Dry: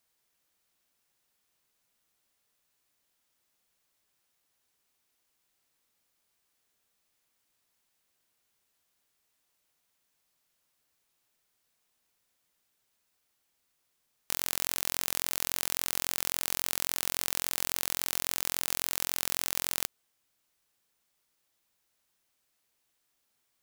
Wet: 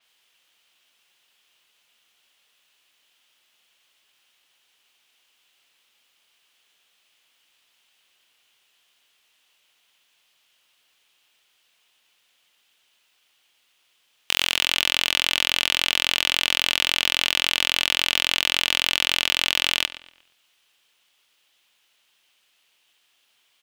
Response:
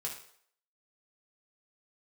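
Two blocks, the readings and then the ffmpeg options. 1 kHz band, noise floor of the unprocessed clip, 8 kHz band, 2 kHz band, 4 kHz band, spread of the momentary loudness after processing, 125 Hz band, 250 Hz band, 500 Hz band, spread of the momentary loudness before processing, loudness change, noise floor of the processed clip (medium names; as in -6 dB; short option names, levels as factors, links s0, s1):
+8.5 dB, -77 dBFS, +1.5 dB, +16.0 dB, +17.5 dB, 1 LU, +4.5 dB, +6.5 dB, +7.0 dB, 1 LU, +9.5 dB, -67 dBFS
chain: -filter_complex "[0:a]equalizer=f=3000:w=1.9:g=11.5,asplit=2[s0][s1];[s1]highpass=f=720:p=1,volume=4.47,asoftclip=type=tanh:threshold=0.708[s2];[s0][s2]amix=inputs=2:normalize=0,lowpass=f=5300:p=1,volume=0.501,asplit=2[s3][s4];[s4]adelay=118,lowpass=f=3700:p=1,volume=0.224,asplit=2[s5][s6];[s6]adelay=118,lowpass=f=3700:p=1,volume=0.43,asplit=2[s7][s8];[s8]adelay=118,lowpass=f=3700:p=1,volume=0.43,asplit=2[s9][s10];[s10]adelay=118,lowpass=f=3700:p=1,volume=0.43[s11];[s3][s5][s7][s9][s11]amix=inputs=5:normalize=0,asplit=2[s12][s13];[s13]aeval=exprs='sgn(val(0))*max(abs(val(0))-0.0133,0)':c=same,volume=0.562[s14];[s12][s14]amix=inputs=2:normalize=0,adynamicequalizer=threshold=0.0112:dfrequency=6300:dqfactor=0.7:tfrequency=6300:tqfactor=0.7:attack=5:release=100:ratio=0.375:range=2:mode=cutabove:tftype=highshelf,volume=1.41"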